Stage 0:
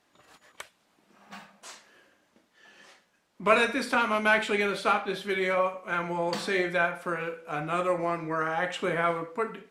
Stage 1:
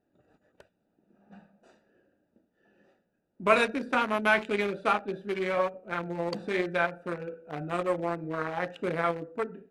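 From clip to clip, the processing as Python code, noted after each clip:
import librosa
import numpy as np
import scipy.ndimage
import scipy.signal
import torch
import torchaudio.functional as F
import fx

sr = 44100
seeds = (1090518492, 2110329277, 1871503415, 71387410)

y = fx.wiener(x, sr, points=41)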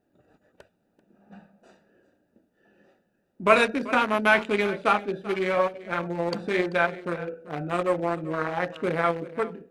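y = x + 10.0 ** (-17.5 / 20.0) * np.pad(x, (int(388 * sr / 1000.0), 0))[:len(x)]
y = y * 10.0 ** (4.0 / 20.0)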